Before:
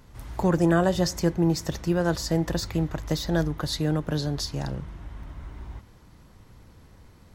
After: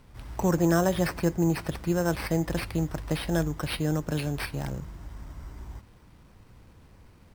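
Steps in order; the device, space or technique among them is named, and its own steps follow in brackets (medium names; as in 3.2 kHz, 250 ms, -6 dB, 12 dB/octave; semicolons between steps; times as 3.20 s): crushed at another speed (playback speed 0.8×; sample-and-hold 8×; playback speed 1.25×); trim -2 dB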